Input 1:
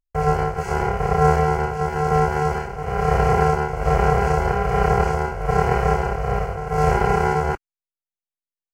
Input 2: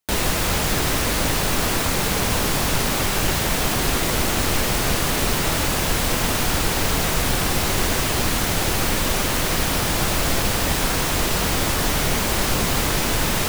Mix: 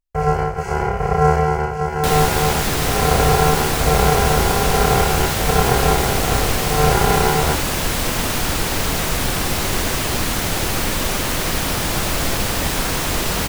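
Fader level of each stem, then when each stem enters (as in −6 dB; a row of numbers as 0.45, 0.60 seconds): +1.5, +0.5 decibels; 0.00, 1.95 seconds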